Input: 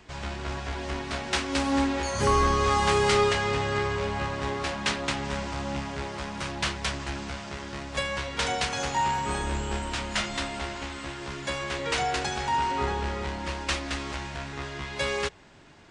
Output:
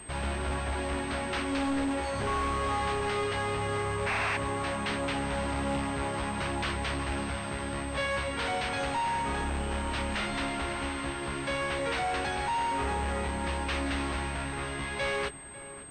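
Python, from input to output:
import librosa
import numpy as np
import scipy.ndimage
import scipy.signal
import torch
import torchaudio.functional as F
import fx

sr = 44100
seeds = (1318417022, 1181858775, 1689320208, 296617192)

p1 = fx.spec_paint(x, sr, seeds[0], shape='noise', start_s=4.06, length_s=0.31, low_hz=640.0, high_hz=2800.0, level_db=-21.0)
p2 = fx.rider(p1, sr, range_db=4, speed_s=2.0)
p3 = np.clip(p2, -10.0 ** (-28.0 / 20.0), 10.0 ** (-28.0 / 20.0))
p4 = fx.doubler(p3, sr, ms=18.0, db=-12.5)
p5 = p4 + fx.echo_filtered(p4, sr, ms=546, feedback_pct=56, hz=2000.0, wet_db=-15, dry=0)
y = fx.pwm(p5, sr, carrier_hz=8400.0)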